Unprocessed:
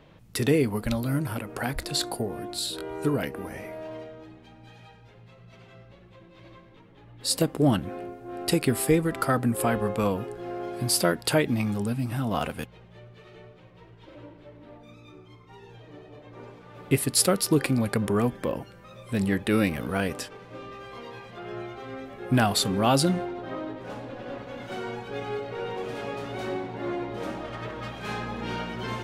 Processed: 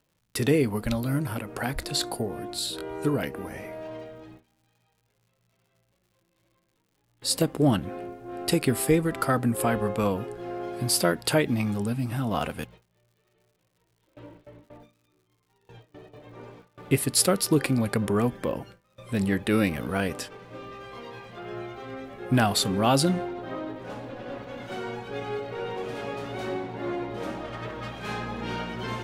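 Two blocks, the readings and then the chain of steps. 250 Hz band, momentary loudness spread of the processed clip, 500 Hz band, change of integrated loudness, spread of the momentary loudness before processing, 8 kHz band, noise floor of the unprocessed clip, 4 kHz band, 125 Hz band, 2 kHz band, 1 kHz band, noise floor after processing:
0.0 dB, 16 LU, 0.0 dB, 0.0 dB, 18 LU, 0.0 dB, -52 dBFS, 0.0 dB, 0.0 dB, 0.0 dB, 0.0 dB, -72 dBFS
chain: gate with hold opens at -37 dBFS; crackle 160 per s -56 dBFS

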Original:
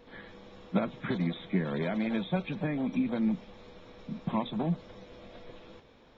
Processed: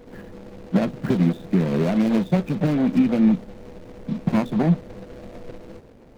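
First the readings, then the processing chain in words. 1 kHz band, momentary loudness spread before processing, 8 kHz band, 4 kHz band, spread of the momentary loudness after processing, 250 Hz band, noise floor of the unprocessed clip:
+6.0 dB, 20 LU, no reading, +3.5 dB, 21 LU, +11.5 dB, -58 dBFS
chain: median filter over 41 samples; loudness maximiser +20.5 dB; trim -8.5 dB

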